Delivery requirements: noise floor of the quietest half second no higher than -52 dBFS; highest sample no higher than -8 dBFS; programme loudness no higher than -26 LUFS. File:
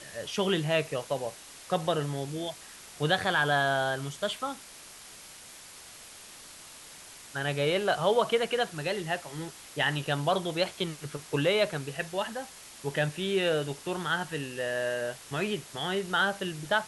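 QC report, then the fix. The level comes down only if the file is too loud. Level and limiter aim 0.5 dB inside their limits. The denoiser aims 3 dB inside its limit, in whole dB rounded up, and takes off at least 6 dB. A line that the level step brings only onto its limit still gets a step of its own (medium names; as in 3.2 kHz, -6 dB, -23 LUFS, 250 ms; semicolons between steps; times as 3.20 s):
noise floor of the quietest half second -49 dBFS: fail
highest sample -12.5 dBFS: pass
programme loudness -30.0 LUFS: pass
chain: noise reduction 6 dB, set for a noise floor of -49 dBFS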